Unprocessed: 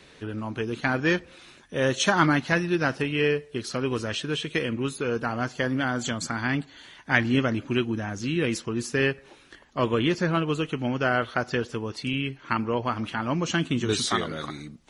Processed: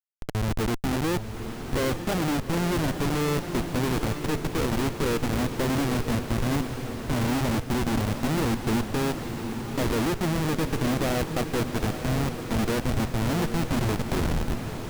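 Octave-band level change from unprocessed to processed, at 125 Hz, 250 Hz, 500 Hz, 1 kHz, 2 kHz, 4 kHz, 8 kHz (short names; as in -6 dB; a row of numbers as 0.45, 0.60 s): +3.0, +1.0, -1.5, -1.5, -6.5, -3.0, +0.5 dB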